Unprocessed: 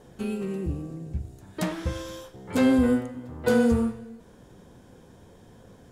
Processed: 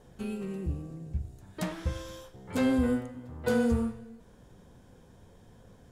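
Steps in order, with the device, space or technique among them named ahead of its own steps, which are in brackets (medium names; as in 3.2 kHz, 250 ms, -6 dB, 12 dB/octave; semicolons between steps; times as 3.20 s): low shelf boost with a cut just above (bass shelf 66 Hz +8 dB; peaking EQ 330 Hz -3 dB 0.73 oct); trim -5 dB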